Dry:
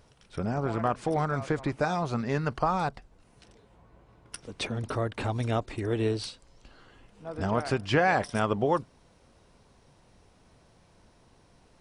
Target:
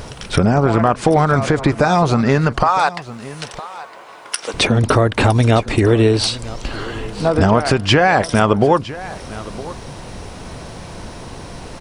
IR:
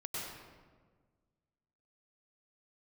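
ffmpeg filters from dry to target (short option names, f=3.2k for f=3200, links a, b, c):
-filter_complex "[0:a]asettb=1/sr,asplit=3[a][b][c];[a]atrim=end=2.634[d];[b]atrim=start=2.63:end=4.54,asetpts=PTS-STARTPTS,afade=t=in:d=0.004:c=qsin,afade=t=out:st=1.906:d=0.004:c=qsin,highpass=760[e];[c]atrim=start=4.536[f];[d][e]acrossfade=d=0.004:c1=hsin:c2=qsin[g];[g][f]acrossfade=d=0.004:c1=qsin:c2=hsin,acompressor=threshold=-40dB:ratio=4,asplit=2[h][i];[i]aecho=0:1:961:0.133[j];[h][j]amix=inputs=2:normalize=0,alimiter=level_in=28.5dB:limit=-1dB:release=50:level=0:latency=1,volume=-1dB"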